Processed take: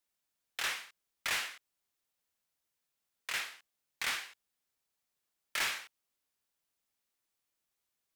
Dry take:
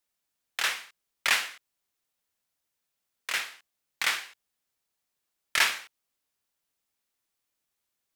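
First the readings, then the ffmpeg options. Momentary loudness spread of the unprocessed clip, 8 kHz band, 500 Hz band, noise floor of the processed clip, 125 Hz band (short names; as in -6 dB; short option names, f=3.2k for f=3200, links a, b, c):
15 LU, -7.0 dB, -6.5 dB, under -85 dBFS, n/a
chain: -af "asoftclip=type=tanh:threshold=-25.5dB,volume=-3dB"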